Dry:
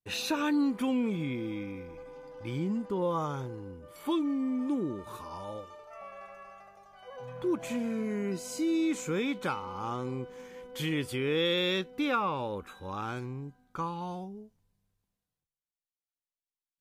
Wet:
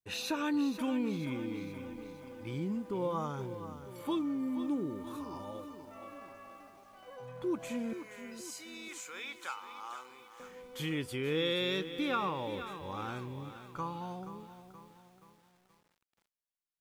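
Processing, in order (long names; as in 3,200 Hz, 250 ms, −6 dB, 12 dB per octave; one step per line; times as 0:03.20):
0:07.93–0:10.40: high-pass filter 1,100 Hz 12 dB per octave
feedback echo at a low word length 476 ms, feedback 55%, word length 9 bits, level −11 dB
level −4 dB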